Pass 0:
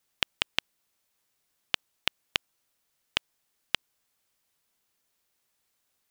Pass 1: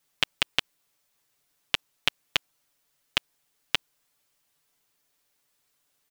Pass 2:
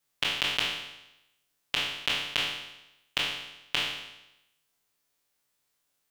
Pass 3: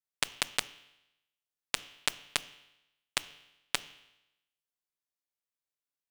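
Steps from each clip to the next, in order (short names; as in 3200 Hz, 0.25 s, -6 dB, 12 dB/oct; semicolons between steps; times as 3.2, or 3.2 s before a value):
comb 6.9 ms; gain +1.5 dB
spectral trails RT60 0.91 s; gain -6 dB
added harmonics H 3 -8 dB, 4 -28 dB, 5 -33 dB, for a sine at -6.5 dBFS; modulation noise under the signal 20 dB; gain +2.5 dB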